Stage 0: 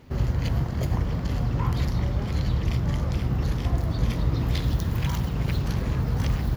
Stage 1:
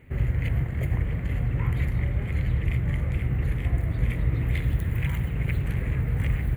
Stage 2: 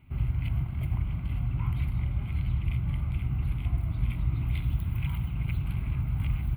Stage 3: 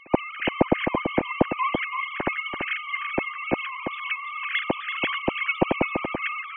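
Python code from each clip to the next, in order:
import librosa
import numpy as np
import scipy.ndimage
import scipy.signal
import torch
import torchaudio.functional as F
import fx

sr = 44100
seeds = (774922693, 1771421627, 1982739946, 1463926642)

y1 = fx.curve_eq(x, sr, hz=(130.0, 210.0, 450.0, 1000.0, 1500.0, 2100.0, 5400.0, 8100.0, 12000.0), db=(0, -6, -3, -10, -3, 7, -26, -2, -4))
y2 = fx.fixed_phaser(y1, sr, hz=1800.0, stages=6)
y2 = y2 * 10.0 ** (-3.0 / 20.0)
y3 = fx.sine_speech(y2, sr)
y3 = y3 + 10.0 ** (-6.5 / 20.0) * np.pad(y3, (int(335 * sr / 1000.0), 0))[:len(y3)]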